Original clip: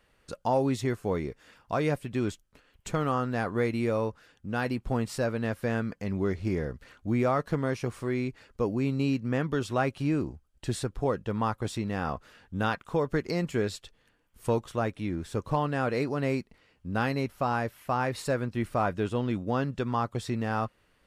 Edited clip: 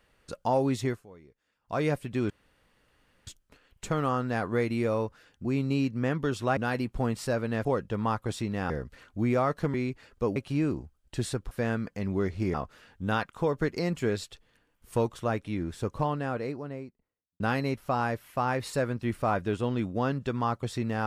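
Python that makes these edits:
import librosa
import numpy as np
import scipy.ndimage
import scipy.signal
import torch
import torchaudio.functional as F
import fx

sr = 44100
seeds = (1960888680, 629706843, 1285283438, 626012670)

y = fx.studio_fade_out(x, sr, start_s=15.22, length_s=1.7)
y = fx.edit(y, sr, fx.fade_down_up(start_s=0.87, length_s=0.93, db=-21.5, fade_s=0.19),
    fx.insert_room_tone(at_s=2.3, length_s=0.97),
    fx.swap(start_s=5.56, length_s=1.03, other_s=11.01, other_length_s=1.05),
    fx.cut(start_s=7.63, length_s=0.49),
    fx.move(start_s=8.74, length_s=1.12, to_s=4.48), tone=tone)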